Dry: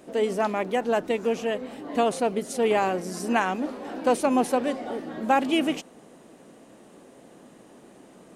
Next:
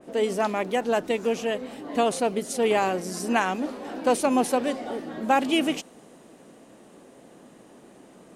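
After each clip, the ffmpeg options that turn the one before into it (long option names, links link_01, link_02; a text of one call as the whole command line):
ffmpeg -i in.wav -af "adynamicequalizer=threshold=0.0126:dfrequency=2700:dqfactor=0.7:tfrequency=2700:tqfactor=0.7:attack=5:release=100:ratio=0.375:range=2:mode=boostabove:tftype=highshelf" out.wav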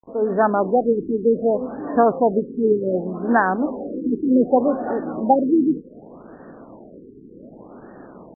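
ffmpeg -i in.wav -af "dynaudnorm=framelen=180:gausssize=3:maxgain=9dB,acrusher=bits=6:mix=0:aa=0.000001,afftfilt=real='re*lt(b*sr/1024,450*pow(1900/450,0.5+0.5*sin(2*PI*0.66*pts/sr)))':imag='im*lt(b*sr/1024,450*pow(1900/450,0.5+0.5*sin(2*PI*0.66*pts/sr)))':win_size=1024:overlap=0.75" out.wav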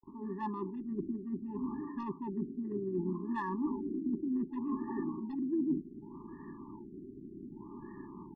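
ffmpeg -i in.wav -af "aeval=exprs='0.668*(cos(1*acos(clip(val(0)/0.668,-1,1)))-cos(1*PI/2))+0.0531*(cos(5*acos(clip(val(0)/0.668,-1,1)))-cos(5*PI/2))+0.0266*(cos(7*acos(clip(val(0)/0.668,-1,1)))-cos(7*PI/2))':channel_layout=same,areverse,acompressor=threshold=-24dB:ratio=12,areverse,afftfilt=real='re*eq(mod(floor(b*sr/1024/410),2),0)':imag='im*eq(mod(floor(b*sr/1024/410),2),0)':win_size=1024:overlap=0.75,volume=-5dB" out.wav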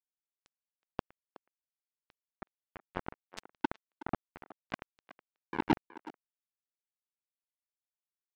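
ffmpeg -i in.wav -filter_complex "[0:a]aeval=exprs='0.0708*(cos(1*acos(clip(val(0)/0.0708,-1,1)))-cos(1*PI/2))+0.0282*(cos(3*acos(clip(val(0)/0.0708,-1,1)))-cos(3*PI/2))':channel_layout=same,acrusher=bits=4:mix=0:aa=0.5,asplit=2[link_01][link_02];[link_02]adelay=370,highpass=300,lowpass=3400,asoftclip=type=hard:threshold=-29dB,volume=-15dB[link_03];[link_01][link_03]amix=inputs=2:normalize=0,volume=7.5dB" out.wav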